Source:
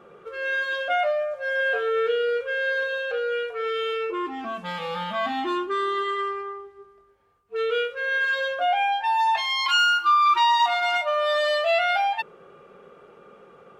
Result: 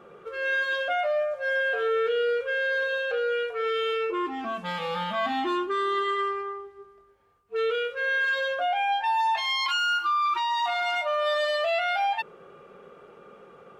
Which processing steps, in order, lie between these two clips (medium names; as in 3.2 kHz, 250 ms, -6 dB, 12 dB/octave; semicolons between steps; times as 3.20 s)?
peak limiter -19.5 dBFS, peak gain reduction 9 dB